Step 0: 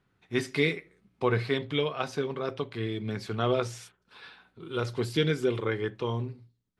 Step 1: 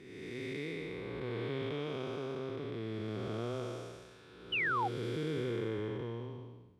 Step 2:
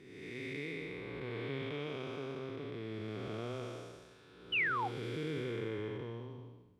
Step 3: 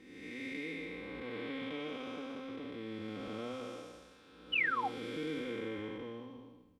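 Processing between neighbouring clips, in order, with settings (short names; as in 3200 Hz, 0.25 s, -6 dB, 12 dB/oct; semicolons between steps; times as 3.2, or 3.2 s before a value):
time blur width 0.602 s; bell 340 Hz +3 dB 1 oct; painted sound fall, 4.52–4.88, 720–3100 Hz -27 dBFS; gain -5.5 dB
dynamic EQ 2300 Hz, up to +5 dB, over -57 dBFS, Q 1.8; reverb RT60 0.55 s, pre-delay 7 ms, DRR 17 dB; gain -3 dB
comb 3.8 ms, depth 91%; gain -2 dB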